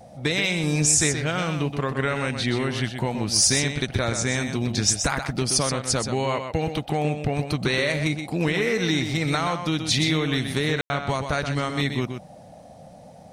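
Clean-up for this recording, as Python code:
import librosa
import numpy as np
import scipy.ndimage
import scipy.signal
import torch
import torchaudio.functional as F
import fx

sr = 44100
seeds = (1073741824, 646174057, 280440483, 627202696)

y = fx.fix_ambience(x, sr, seeds[0], print_start_s=12.74, print_end_s=13.24, start_s=10.81, end_s=10.9)
y = fx.noise_reduce(y, sr, print_start_s=12.74, print_end_s=13.24, reduce_db=27.0)
y = fx.fix_echo_inverse(y, sr, delay_ms=126, level_db=-7.5)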